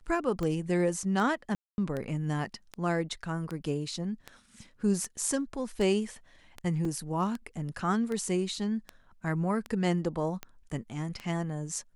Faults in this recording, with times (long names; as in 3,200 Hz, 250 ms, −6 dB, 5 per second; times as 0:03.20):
scratch tick 78 rpm −22 dBFS
0:01.55–0:01.78: drop-out 231 ms
0:06.85: drop-out 2.7 ms